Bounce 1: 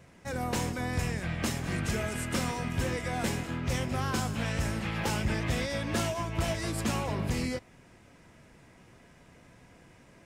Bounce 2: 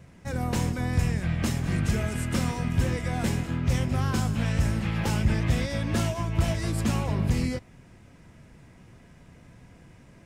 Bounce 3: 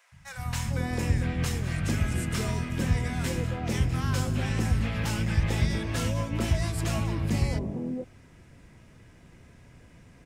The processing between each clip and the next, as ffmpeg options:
-af "bass=f=250:g=8,treble=f=4000:g=0"
-filter_complex "[0:a]acrossover=split=180|810[s0][s1][s2];[s0]adelay=120[s3];[s1]adelay=450[s4];[s3][s4][s2]amix=inputs=3:normalize=0"

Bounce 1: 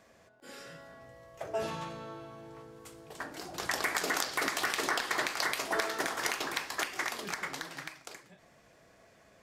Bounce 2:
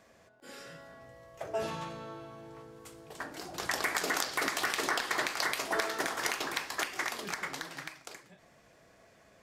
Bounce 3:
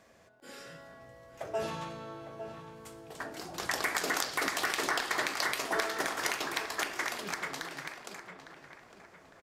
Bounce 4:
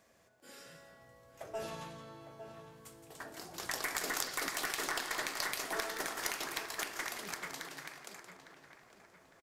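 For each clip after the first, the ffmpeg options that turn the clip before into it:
-af anull
-filter_complex "[0:a]asplit=2[s0][s1];[s1]adelay=856,lowpass=f=2500:p=1,volume=0.299,asplit=2[s2][s3];[s3]adelay=856,lowpass=f=2500:p=1,volume=0.43,asplit=2[s4][s5];[s5]adelay=856,lowpass=f=2500:p=1,volume=0.43,asplit=2[s6][s7];[s7]adelay=856,lowpass=f=2500:p=1,volume=0.43,asplit=2[s8][s9];[s9]adelay=856,lowpass=f=2500:p=1,volume=0.43[s10];[s0][s2][s4][s6][s8][s10]amix=inputs=6:normalize=0"
-af "aeval=exprs='0.2*(cos(1*acos(clip(val(0)/0.2,-1,1)))-cos(1*PI/2))+0.0316*(cos(2*acos(clip(val(0)/0.2,-1,1)))-cos(2*PI/2))':c=same,crystalizer=i=1:c=0,aecho=1:1:171:0.316,volume=0.447"

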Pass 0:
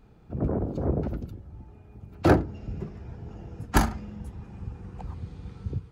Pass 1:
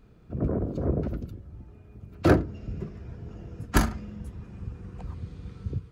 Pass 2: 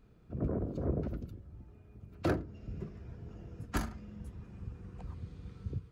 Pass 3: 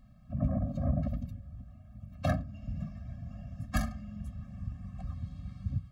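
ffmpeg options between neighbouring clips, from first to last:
-af "equalizer=f=830:w=6.2:g=-11"
-af "alimiter=limit=0.211:level=0:latency=1:release=468,volume=0.473"
-af "afftfilt=real='re*eq(mod(floor(b*sr/1024/260),2),0)':imag='im*eq(mod(floor(b*sr/1024/260),2),0)':win_size=1024:overlap=0.75,volume=1.78"

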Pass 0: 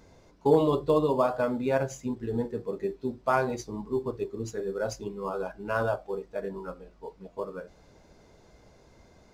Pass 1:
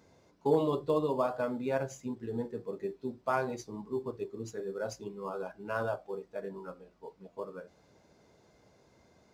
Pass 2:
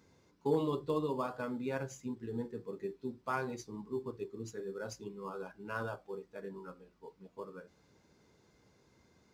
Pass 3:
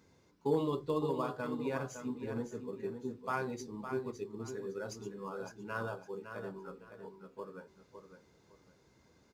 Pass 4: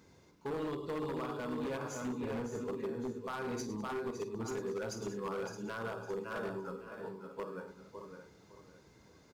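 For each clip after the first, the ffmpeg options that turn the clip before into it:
-af "highpass=94,volume=0.531"
-af "equalizer=f=650:w=2.4:g=-9.5,volume=0.794"
-af "aecho=1:1:559|1118|1677:0.376|0.0977|0.0254"
-af "aecho=1:1:49|104|201|617:0.266|0.237|0.119|0.282,alimiter=level_in=2.37:limit=0.0631:level=0:latency=1:release=208,volume=0.422,aeval=exprs='0.0168*(abs(mod(val(0)/0.0168+3,4)-2)-1)':c=same,volume=1.58"

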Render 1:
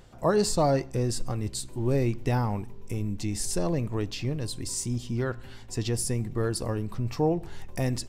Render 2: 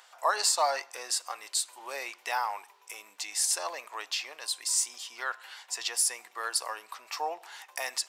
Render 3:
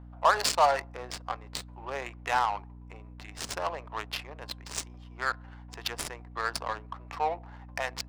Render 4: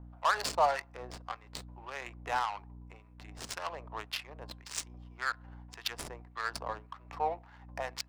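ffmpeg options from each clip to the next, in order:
-af "highpass=f=840:w=0.5412,highpass=f=840:w=1.3066,volume=1.88"
-af "adynamicsmooth=sensitivity=3.5:basefreq=570,aeval=exprs='val(0)+0.00316*(sin(2*PI*60*n/s)+sin(2*PI*2*60*n/s)/2+sin(2*PI*3*60*n/s)/3+sin(2*PI*4*60*n/s)/4+sin(2*PI*5*60*n/s)/5)':c=same,volume=1.68"
-filter_complex "[0:a]acrossover=split=1100[s0][s1];[s0]aeval=exprs='val(0)*(1-0.7/2+0.7/2*cos(2*PI*1.8*n/s))':c=same[s2];[s1]aeval=exprs='val(0)*(1-0.7/2-0.7/2*cos(2*PI*1.8*n/s))':c=same[s3];[s2][s3]amix=inputs=2:normalize=0,volume=0.841"

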